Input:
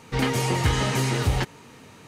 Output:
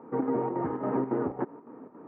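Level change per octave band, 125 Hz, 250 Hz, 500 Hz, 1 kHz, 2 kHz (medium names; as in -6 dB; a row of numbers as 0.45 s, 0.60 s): -17.5 dB, -1.0 dB, -1.0 dB, -5.0 dB, -19.5 dB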